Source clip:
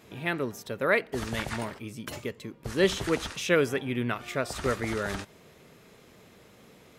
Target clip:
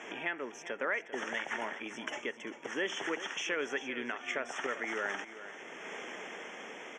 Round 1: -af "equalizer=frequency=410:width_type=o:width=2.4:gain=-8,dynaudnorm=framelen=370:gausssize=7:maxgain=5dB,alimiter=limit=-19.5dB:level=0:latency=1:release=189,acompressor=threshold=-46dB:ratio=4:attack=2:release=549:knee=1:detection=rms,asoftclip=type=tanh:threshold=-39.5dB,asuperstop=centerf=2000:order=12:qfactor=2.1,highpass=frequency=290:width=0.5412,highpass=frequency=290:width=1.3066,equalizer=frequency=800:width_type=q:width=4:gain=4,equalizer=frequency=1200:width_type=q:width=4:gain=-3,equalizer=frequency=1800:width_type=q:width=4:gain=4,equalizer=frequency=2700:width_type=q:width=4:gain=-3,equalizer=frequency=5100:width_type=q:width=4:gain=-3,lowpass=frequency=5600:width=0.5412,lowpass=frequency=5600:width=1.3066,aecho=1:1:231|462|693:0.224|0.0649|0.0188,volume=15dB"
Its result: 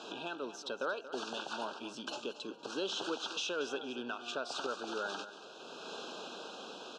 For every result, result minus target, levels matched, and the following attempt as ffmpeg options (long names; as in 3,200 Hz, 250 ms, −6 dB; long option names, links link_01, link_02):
echo 165 ms early; soft clipping: distortion +11 dB; 2,000 Hz band −5.5 dB
-af "equalizer=frequency=410:width_type=o:width=2.4:gain=-8,dynaudnorm=framelen=370:gausssize=7:maxgain=5dB,alimiter=limit=-19.5dB:level=0:latency=1:release=189,acompressor=threshold=-46dB:ratio=4:attack=2:release=549:knee=1:detection=rms,asoftclip=type=tanh:threshold=-39.5dB,asuperstop=centerf=2000:order=12:qfactor=2.1,highpass=frequency=290:width=0.5412,highpass=frequency=290:width=1.3066,equalizer=frequency=800:width_type=q:width=4:gain=4,equalizer=frequency=1200:width_type=q:width=4:gain=-3,equalizer=frequency=1800:width_type=q:width=4:gain=4,equalizer=frequency=2700:width_type=q:width=4:gain=-3,equalizer=frequency=5100:width_type=q:width=4:gain=-3,lowpass=frequency=5600:width=0.5412,lowpass=frequency=5600:width=1.3066,aecho=1:1:396|792|1188:0.224|0.0649|0.0188,volume=15dB"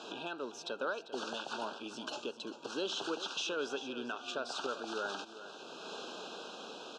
soft clipping: distortion +11 dB; 2,000 Hz band −5.5 dB
-af "equalizer=frequency=410:width_type=o:width=2.4:gain=-8,dynaudnorm=framelen=370:gausssize=7:maxgain=5dB,alimiter=limit=-19.5dB:level=0:latency=1:release=189,acompressor=threshold=-46dB:ratio=4:attack=2:release=549:knee=1:detection=rms,asoftclip=type=tanh:threshold=-33dB,asuperstop=centerf=2000:order=12:qfactor=2.1,highpass=frequency=290:width=0.5412,highpass=frequency=290:width=1.3066,equalizer=frequency=800:width_type=q:width=4:gain=4,equalizer=frequency=1200:width_type=q:width=4:gain=-3,equalizer=frequency=1800:width_type=q:width=4:gain=4,equalizer=frequency=2700:width_type=q:width=4:gain=-3,equalizer=frequency=5100:width_type=q:width=4:gain=-3,lowpass=frequency=5600:width=0.5412,lowpass=frequency=5600:width=1.3066,aecho=1:1:396|792|1188:0.224|0.0649|0.0188,volume=15dB"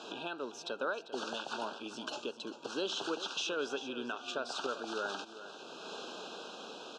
2,000 Hz band −5.5 dB
-af "equalizer=frequency=410:width_type=o:width=2.4:gain=-8,dynaudnorm=framelen=370:gausssize=7:maxgain=5dB,alimiter=limit=-19.5dB:level=0:latency=1:release=189,acompressor=threshold=-46dB:ratio=4:attack=2:release=549:knee=1:detection=rms,asoftclip=type=tanh:threshold=-33dB,asuperstop=centerf=4300:order=12:qfactor=2.1,highpass=frequency=290:width=0.5412,highpass=frequency=290:width=1.3066,equalizer=frequency=800:width_type=q:width=4:gain=4,equalizer=frequency=1200:width_type=q:width=4:gain=-3,equalizer=frequency=1800:width_type=q:width=4:gain=4,equalizer=frequency=2700:width_type=q:width=4:gain=-3,equalizer=frequency=5100:width_type=q:width=4:gain=-3,lowpass=frequency=5600:width=0.5412,lowpass=frequency=5600:width=1.3066,aecho=1:1:396|792|1188:0.224|0.0649|0.0188,volume=15dB"